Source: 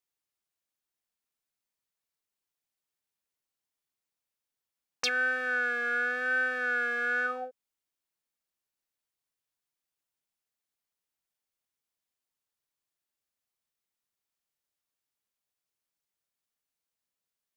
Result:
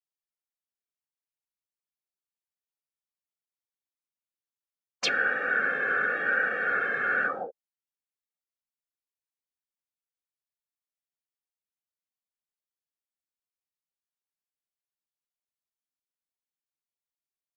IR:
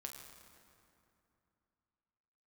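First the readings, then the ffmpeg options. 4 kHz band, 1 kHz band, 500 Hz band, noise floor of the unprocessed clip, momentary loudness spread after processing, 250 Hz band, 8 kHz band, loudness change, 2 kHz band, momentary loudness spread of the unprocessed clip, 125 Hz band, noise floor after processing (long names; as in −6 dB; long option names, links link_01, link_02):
+2.0 dB, +4.5 dB, +2.5 dB, below −85 dBFS, 5 LU, +2.5 dB, −0.5 dB, +2.5 dB, +2.0 dB, 5 LU, can't be measured, below −85 dBFS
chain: -af "afftfilt=real='hypot(re,im)*cos(2*PI*random(0))':imag='hypot(re,im)*sin(2*PI*random(1))':win_size=512:overlap=0.75,afftdn=noise_reduction=15:noise_floor=-52,volume=8.5dB"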